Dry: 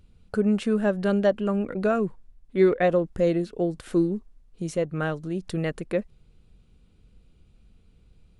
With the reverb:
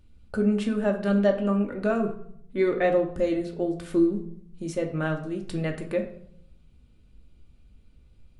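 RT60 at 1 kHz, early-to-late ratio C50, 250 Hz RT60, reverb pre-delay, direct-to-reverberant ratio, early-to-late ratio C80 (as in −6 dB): 0.60 s, 10.0 dB, 1.0 s, 3 ms, 2.0 dB, 13.0 dB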